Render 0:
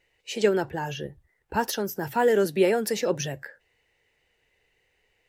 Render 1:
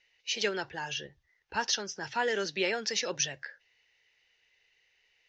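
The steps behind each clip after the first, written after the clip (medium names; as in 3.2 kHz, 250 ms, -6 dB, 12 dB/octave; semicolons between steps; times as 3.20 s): steep low-pass 6.4 kHz 72 dB/octave; tilt shelf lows -10 dB, about 1.2 kHz; trim -4 dB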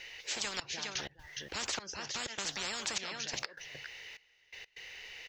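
trance gate "xxxxx...x." 126 bpm -24 dB; delay 412 ms -22 dB; spectrum-flattening compressor 10:1; trim -5 dB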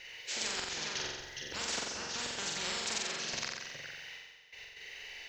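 flutter echo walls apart 7.7 m, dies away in 1.2 s; trim -2.5 dB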